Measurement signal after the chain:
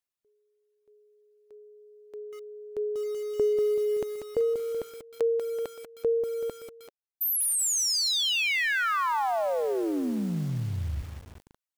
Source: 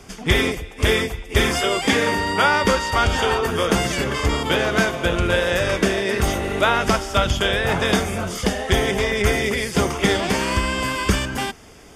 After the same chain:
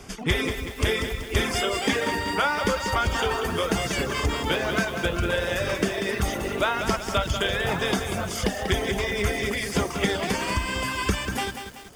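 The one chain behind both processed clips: compression 2:1, threshold -23 dBFS; reverb removal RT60 1.2 s; bit-crushed delay 190 ms, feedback 55%, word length 7-bit, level -7.5 dB

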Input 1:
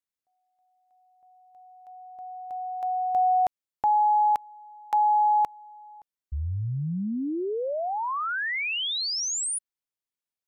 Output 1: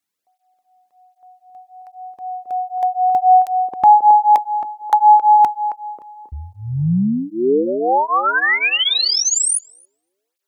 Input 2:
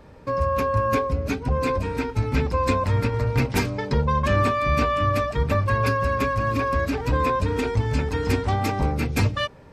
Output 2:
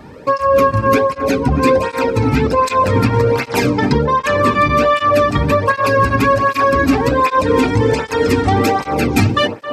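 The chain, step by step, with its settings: on a send: band-passed feedback delay 269 ms, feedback 48%, band-pass 390 Hz, level -5.5 dB; on the sum: loudness maximiser +14.5 dB; cancelling through-zero flanger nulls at 1.3 Hz, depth 2.1 ms

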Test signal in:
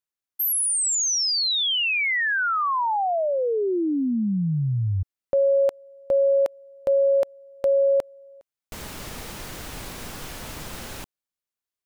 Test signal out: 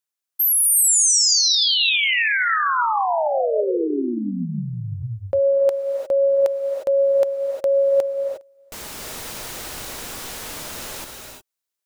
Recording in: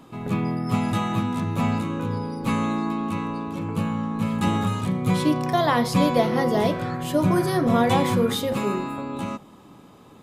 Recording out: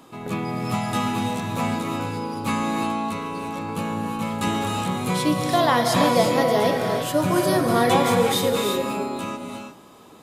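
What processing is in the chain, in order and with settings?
tone controls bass -8 dB, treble +4 dB; gated-style reverb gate 380 ms rising, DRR 3 dB; trim +1.5 dB

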